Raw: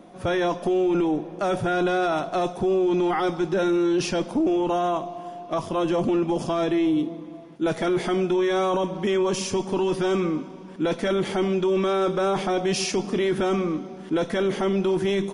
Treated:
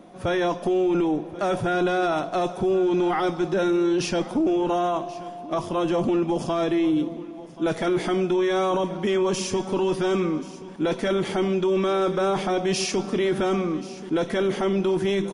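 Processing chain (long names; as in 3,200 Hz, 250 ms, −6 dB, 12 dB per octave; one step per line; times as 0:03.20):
single-tap delay 1,082 ms −18 dB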